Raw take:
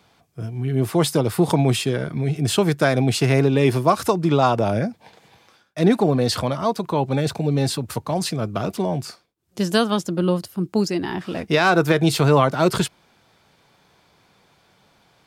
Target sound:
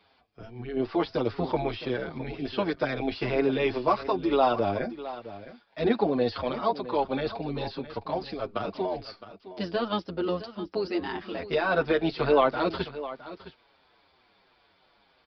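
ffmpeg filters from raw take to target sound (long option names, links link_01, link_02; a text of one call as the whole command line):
ffmpeg -i in.wav -filter_complex "[0:a]deesser=0.7,tremolo=f=99:d=0.333,equalizer=frequency=140:width=1.3:gain=-14.5,asplit=2[link_01][link_02];[link_02]aecho=0:1:662:0.188[link_03];[link_01][link_03]amix=inputs=2:normalize=0,aresample=11025,aresample=44100,asplit=2[link_04][link_05];[link_05]adelay=6.7,afreqshift=-3[link_06];[link_04][link_06]amix=inputs=2:normalize=1" out.wav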